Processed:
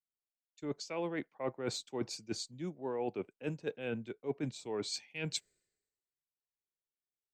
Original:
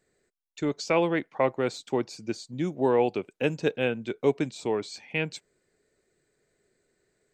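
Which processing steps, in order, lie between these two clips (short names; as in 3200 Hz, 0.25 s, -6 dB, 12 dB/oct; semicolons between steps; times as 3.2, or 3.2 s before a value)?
reverse; compressor 6:1, threshold -33 dBFS, peak gain reduction 15 dB; reverse; three-band expander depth 100%; gain -2 dB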